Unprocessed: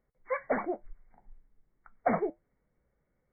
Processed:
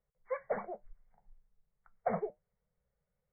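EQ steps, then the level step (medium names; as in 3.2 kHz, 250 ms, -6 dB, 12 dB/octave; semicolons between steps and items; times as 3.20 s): Chebyshev band-stop 190–450 Hz, order 2; dynamic bell 310 Hz, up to +6 dB, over -43 dBFS, Q 0.73; distance through air 370 m; -6.0 dB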